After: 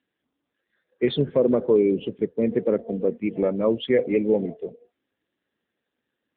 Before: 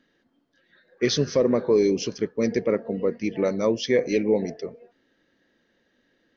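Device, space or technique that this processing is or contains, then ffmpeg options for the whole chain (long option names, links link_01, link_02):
mobile call with aggressive noise cancelling: -af "highpass=100,afftdn=noise_reduction=13:noise_floor=-35,volume=1.5dB" -ar 8000 -c:a libopencore_amrnb -b:a 7950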